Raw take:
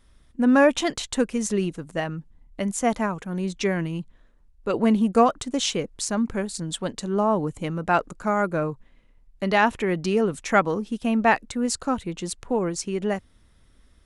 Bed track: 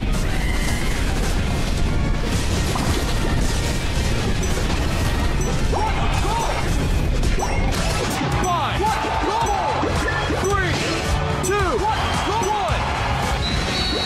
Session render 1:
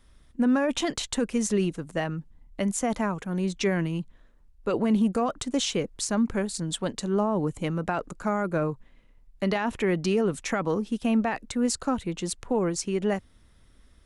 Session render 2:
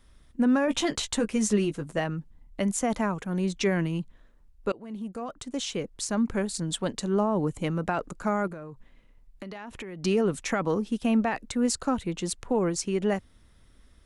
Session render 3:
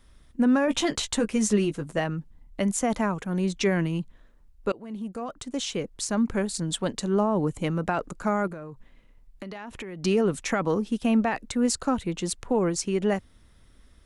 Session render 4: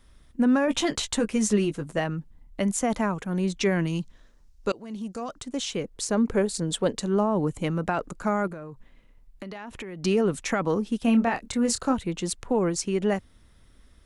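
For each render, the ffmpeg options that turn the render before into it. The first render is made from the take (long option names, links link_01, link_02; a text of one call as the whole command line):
ffmpeg -i in.wav -filter_complex "[0:a]alimiter=limit=-15.5dB:level=0:latency=1:release=13,acrossover=split=430[link_01][link_02];[link_02]acompressor=threshold=-25dB:ratio=6[link_03];[link_01][link_03]amix=inputs=2:normalize=0" out.wav
ffmpeg -i in.wav -filter_complex "[0:a]asettb=1/sr,asplit=3[link_01][link_02][link_03];[link_01]atrim=end=0.664[link_04];[link_02]atrim=start=0.66:end=1.99,asetpts=PTS-STARTPTS,afade=type=in:duration=0.004:curve=qsin,afade=type=out:start_time=1.326:duration=0.004:curve=qsin,asplit=2[link_05][link_06];[link_06]adelay=14,volume=-7dB[link_07];[link_05][link_07]amix=inputs=2:normalize=0,atrim=end_sample=58653[link_08];[link_03]atrim=start=1.986[link_09];[link_04][link_08]acrossfade=duration=0.004:curve1=hsin:curve2=qsin[link_10];[link_10][link_09]acrossfade=duration=0.004:curve1=qsin:curve2=hsin,asettb=1/sr,asplit=3[link_11][link_12][link_13];[link_11]atrim=end=8.474[link_14];[link_12]atrim=start=8.47:end=10.04,asetpts=PTS-STARTPTS,afade=type=in:duration=0.004:curve=qsin,afade=type=out:start_time=1.566:duration=0.004:curve=qsin,acompressor=threshold=-35dB:ratio=16:attack=3.2:release=140:knee=1:detection=peak[link_15];[link_13]atrim=start=10.036[link_16];[link_14][link_15]acrossfade=duration=0.004:curve1=hsin:curve2=qsin[link_17];[link_17][link_16]acrossfade=duration=0.004:curve1=qsin:curve2=hsin,asplit=2[link_18][link_19];[link_18]atrim=end=4.72,asetpts=PTS-STARTPTS,afade=type=out:start_time=4.716:duration=0.004:curve=hsin:silence=0.0630957[link_20];[link_19]atrim=start=4.72,asetpts=PTS-STARTPTS,afade=type=in:duration=1.77:silence=0.0630957[link_21];[link_20][link_21]concat=n=2:v=0:a=1" out.wav
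ffmpeg -i in.wav -af "volume=1.5dB" out.wav
ffmpeg -i in.wav -filter_complex "[0:a]asettb=1/sr,asplit=3[link_01][link_02][link_03];[link_01]atrim=end=3.874[link_04];[link_02]atrim=start=3.87:end=5.39,asetpts=PTS-STARTPTS,afade=type=in:duration=0.004:curve=qsin,afade=type=out:start_time=1.516:duration=0.004:curve=qsin,equalizer=frequency=5700:width_type=o:width=1.2:gain=12[link_05];[link_03]atrim=start=5.386[link_06];[link_04][link_05]acrossfade=duration=0.004:curve1=hsin:curve2=qsin[link_07];[link_07][link_06]acrossfade=duration=0.004:curve1=qsin:curve2=hsin,asettb=1/sr,asplit=3[link_08][link_09][link_10];[link_08]atrim=end=5.904[link_11];[link_09]atrim=start=5.9:end=6.98,asetpts=PTS-STARTPTS,afade=type=in:duration=0.004:curve=qsin,afade=type=out:start_time=1.076:duration=0.004:curve=qsin,equalizer=frequency=460:width_type=o:width=0.61:gain=9[link_12];[link_10]atrim=start=6.976[link_13];[link_11][link_12]acrossfade=duration=0.004:curve1=hsin:curve2=qsin[link_14];[link_14][link_13]acrossfade=duration=0.004:curve1=qsin:curve2=hsin,asettb=1/sr,asplit=3[link_15][link_16][link_17];[link_15]atrim=end=11.034[link_18];[link_16]atrim=start=11.03:end=11.93,asetpts=PTS-STARTPTS,afade=type=in:duration=0.004:curve=qsin,afade=type=out:start_time=0.896:duration=0.004:curve=qsin,asplit=2[link_19][link_20];[link_20]adelay=26,volume=-7.5dB[link_21];[link_19][link_21]amix=inputs=2:normalize=0,atrim=end_sample=39690[link_22];[link_17]atrim=start=11.926[link_23];[link_18][link_22]acrossfade=duration=0.004:curve1=hsin:curve2=qsin[link_24];[link_24][link_23]acrossfade=duration=0.004:curve1=qsin:curve2=hsin" out.wav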